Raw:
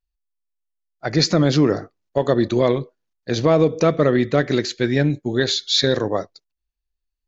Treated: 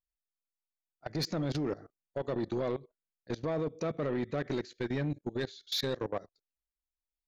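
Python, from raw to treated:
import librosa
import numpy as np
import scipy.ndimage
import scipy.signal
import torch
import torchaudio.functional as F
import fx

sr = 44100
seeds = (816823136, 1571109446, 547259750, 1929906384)

y = fx.high_shelf(x, sr, hz=2500.0, db=-4.0)
y = fx.level_steps(y, sr, step_db=22)
y = 10.0 ** (-19.0 / 20.0) * np.tanh(y / 10.0 ** (-19.0 / 20.0))
y = F.gain(torch.from_numpy(y), -7.0).numpy()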